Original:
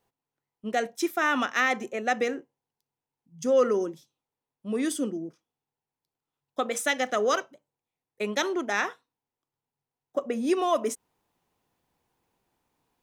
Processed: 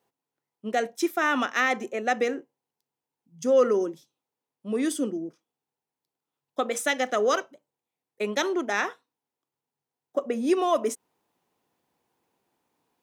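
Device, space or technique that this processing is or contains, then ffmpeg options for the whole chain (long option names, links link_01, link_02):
filter by subtraction: -filter_complex "[0:a]asplit=2[link_01][link_02];[link_02]lowpass=300,volume=-1[link_03];[link_01][link_03]amix=inputs=2:normalize=0"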